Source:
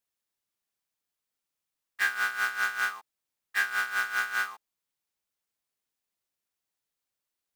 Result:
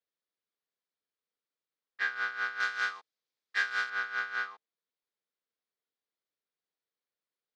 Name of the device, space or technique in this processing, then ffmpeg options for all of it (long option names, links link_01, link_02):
kitchen radio: -filter_complex "[0:a]highpass=170,equalizer=frequency=460:width_type=q:width=4:gain=7,equalizer=frequency=860:width_type=q:width=4:gain=-4,equalizer=frequency=2700:width_type=q:width=4:gain=-5,lowpass=frequency=4600:width=0.5412,lowpass=frequency=4600:width=1.3066,asettb=1/sr,asplit=3[link_01][link_02][link_03];[link_01]atrim=end=2.604[link_04];[link_02]atrim=start=2.6:end=3.9,asetpts=PTS-STARTPTS,afade=type=in:duration=0.004:curve=qsin,afade=type=out:start_time=1.296:duration=0.004:curve=qsin,aemphasis=mode=production:type=75kf[link_05];[link_03]atrim=start=3.896[link_06];[link_04][link_05]acrossfade=duration=0.004:curve1=hsin:curve2=qsin[link_07];[link_07][link_06]acrossfade=duration=0.004:curve1=qsin:curve2=hsin,volume=-4dB"